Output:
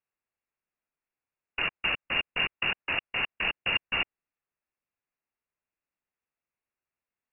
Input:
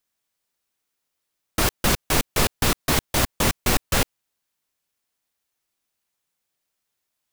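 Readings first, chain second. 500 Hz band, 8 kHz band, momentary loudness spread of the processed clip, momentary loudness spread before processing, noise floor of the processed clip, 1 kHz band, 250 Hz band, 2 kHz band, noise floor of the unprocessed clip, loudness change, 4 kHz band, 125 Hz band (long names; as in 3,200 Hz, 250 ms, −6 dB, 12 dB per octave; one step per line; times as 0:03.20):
−14.5 dB, below −40 dB, 4 LU, 3 LU, below −85 dBFS, −10.5 dB, −18.5 dB, −0.5 dB, −80 dBFS, −6.0 dB, −4.0 dB, −21.0 dB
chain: voice inversion scrambler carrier 2,800 Hz
level −8 dB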